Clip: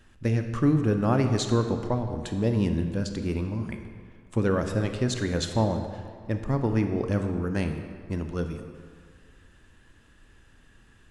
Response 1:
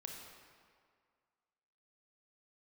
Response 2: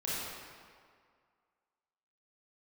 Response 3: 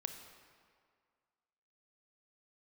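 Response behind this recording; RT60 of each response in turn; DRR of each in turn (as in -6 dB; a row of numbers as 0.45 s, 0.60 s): 3; 2.0 s, 2.0 s, 2.0 s; 0.5 dB, -9.0 dB, 6.0 dB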